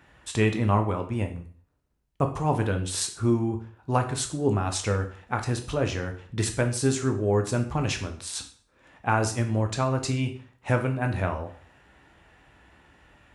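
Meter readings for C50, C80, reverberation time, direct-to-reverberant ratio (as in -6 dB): 10.5 dB, 15.0 dB, 0.45 s, 4.5 dB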